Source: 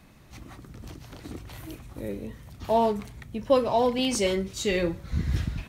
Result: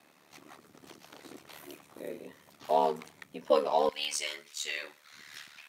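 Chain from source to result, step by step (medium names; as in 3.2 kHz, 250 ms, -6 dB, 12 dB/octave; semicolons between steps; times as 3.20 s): ring modulator 37 Hz; high-pass 380 Hz 12 dB/octave, from 3.89 s 1.4 kHz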